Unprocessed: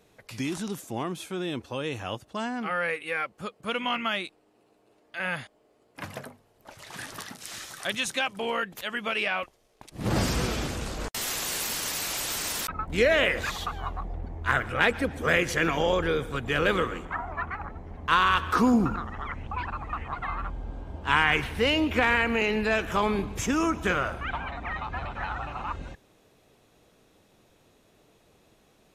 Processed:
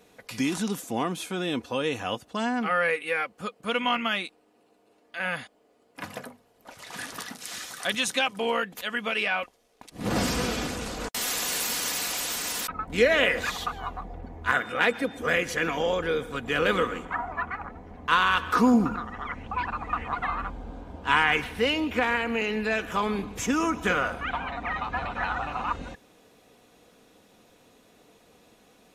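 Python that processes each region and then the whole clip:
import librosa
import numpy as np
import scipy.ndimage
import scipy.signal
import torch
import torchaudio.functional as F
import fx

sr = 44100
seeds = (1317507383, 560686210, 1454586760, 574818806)

y = fx.highpass(x, sr, hz=150.0, slope=12, at=(14.51, 15.17), fade=0.02)
y = fx.dmg_tone(y, sr, hz=3600.0, level_db=-47.0, at=(14.51, 15.17), fade=0.02)
y = fx.low_shelf(y, sr, hz=74.0, db=-11.0)
y = y + 0.36 * np.pad(y, (int(4.1 * sr / 1000.0), 0))[:len(y)]
y = fx.rider(y, sr, range_db=4, speed_s=2.0)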